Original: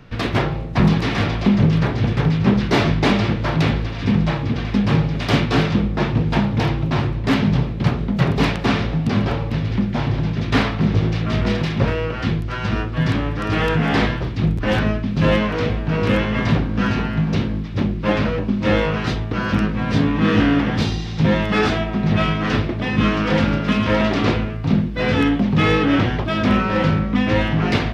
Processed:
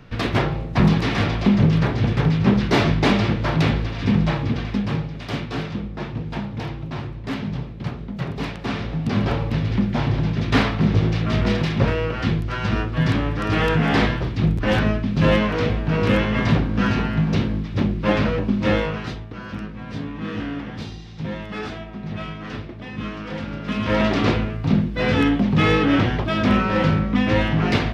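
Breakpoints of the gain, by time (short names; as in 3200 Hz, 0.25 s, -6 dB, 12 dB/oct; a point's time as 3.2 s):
4.5 s -1 dB
5.14 s -10 dB
8.52 s -10 dB
9.32 s -0.5 dB
18.62 s -0.5 dB
19.36 s -12.5 dB
23.47 s -12.5 dB
24 s -1 dB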